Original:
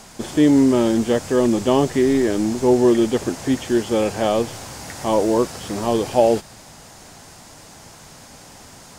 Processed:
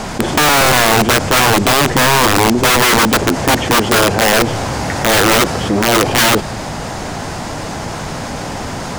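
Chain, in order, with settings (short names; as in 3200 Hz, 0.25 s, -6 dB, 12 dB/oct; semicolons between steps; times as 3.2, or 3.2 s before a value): LPF 2100 Hz 6 dB/oct; wrapped overs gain 15 dB; fast leveller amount 50%; gain +8.5 dB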